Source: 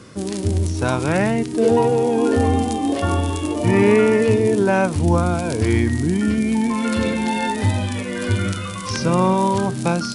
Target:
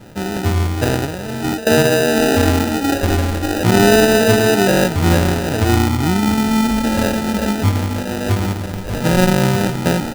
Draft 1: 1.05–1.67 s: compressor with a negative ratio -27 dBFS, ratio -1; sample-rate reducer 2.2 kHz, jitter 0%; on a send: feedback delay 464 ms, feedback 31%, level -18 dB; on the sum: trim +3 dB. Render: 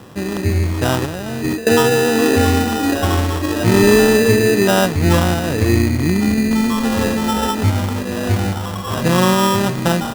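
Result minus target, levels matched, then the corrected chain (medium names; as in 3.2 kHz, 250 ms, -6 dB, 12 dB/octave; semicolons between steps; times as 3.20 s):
sample-rate reducer: distortion -6 dB
1.05–1.67 s: compressor with a negative ratio -27 dBFS, ratio -1; sample-rate reducer 1.1 kHz, jitter 0%; on a send: feedback delay 464 ms, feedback 31%, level -18 dB; on the sum: trim +3 dB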